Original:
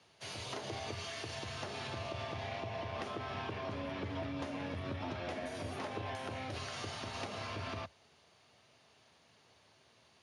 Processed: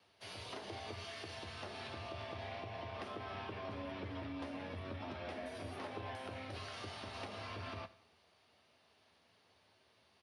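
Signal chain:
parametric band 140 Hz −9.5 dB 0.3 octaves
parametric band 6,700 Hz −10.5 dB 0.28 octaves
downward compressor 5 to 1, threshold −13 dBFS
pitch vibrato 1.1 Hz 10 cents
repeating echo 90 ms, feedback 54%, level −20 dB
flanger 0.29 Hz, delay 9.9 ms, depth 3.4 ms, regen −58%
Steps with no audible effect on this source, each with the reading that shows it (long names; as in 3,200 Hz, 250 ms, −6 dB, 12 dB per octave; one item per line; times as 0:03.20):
downward compressor, threshold −13 dBFS: peak of its input −26.5 dBFS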